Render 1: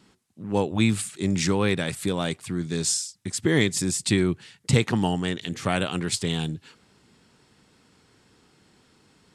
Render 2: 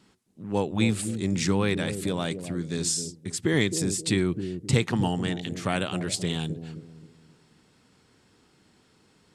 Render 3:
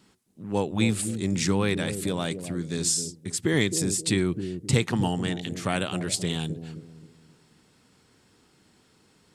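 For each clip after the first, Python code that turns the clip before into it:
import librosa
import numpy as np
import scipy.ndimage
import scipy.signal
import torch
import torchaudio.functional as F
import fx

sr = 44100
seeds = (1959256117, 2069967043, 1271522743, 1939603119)

y1 = fx.echo_bbd(x, sr, ms=263, stages=1024, feedback_pct=36, wet_db=-8)
y1 = y1 * librosa.db_to_amplitude(-2.5)
y2 = fx.high_shelf(y1, sr, hz=9400.0, db=7.0)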